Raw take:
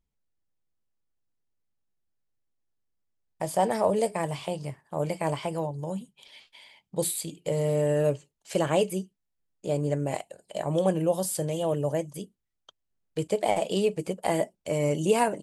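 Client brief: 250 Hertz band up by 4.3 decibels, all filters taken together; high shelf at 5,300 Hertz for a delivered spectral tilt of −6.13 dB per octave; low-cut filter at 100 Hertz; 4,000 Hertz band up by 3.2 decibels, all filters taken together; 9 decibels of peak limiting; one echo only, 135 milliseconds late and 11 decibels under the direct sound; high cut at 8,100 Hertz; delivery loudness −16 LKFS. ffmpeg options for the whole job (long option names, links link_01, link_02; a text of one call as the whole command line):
ffmpeg -i in.wav -af "highpass=100,lowpass=8100,equalizer=frequency=250:width_type=o:gain=7,equalizer=frequency=4000:width_type=o:gain=6,highshelf=frequency=5300:gain=-3,alimiter=limit=-17.5dB:level=0:latency=1,aecho=1:1:135:0.282,volume=13dB" out.wav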